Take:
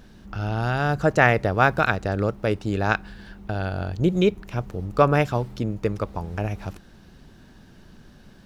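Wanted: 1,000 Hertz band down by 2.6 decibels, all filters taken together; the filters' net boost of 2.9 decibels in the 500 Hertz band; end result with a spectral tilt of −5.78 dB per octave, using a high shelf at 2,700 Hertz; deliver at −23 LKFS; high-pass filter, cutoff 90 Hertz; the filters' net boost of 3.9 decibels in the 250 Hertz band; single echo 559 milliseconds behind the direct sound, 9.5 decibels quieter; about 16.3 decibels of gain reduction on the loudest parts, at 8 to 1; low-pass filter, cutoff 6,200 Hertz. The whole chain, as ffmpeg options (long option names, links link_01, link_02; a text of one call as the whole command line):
ffmpeg -i in.wav -af "highpass=90,lowpass=6200,equalizer=frequency=250:width_type=o:gain=5,equalizer=frequency=500:width_type=o:gain=4,equalizer=frequency=1000:width_type=o:gain=-7.5,highshelf=frequency=2700:gain=8,acompressor=threshold=-28dB:ratio=8,aecho=1:1:559:0.335,volume=11dB" out.wav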